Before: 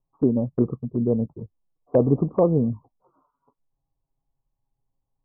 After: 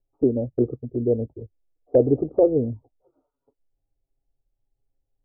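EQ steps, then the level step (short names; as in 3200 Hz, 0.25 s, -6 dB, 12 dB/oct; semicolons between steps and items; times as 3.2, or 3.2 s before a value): LPF 1000 Hz 6 dB/oct; fixed phaser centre 440 Hz, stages 4; +4.0 dB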